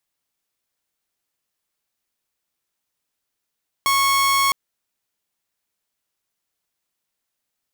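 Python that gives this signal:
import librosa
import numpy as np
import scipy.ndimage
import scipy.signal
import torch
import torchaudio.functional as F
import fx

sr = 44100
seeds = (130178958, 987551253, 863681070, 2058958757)

y = 10.0 ** (-13.0 / 20.0) * (2.0 * np.mod(1100.0 * (np.arange(round(0.66 * sr)) / sr), 1.0) - 1.0)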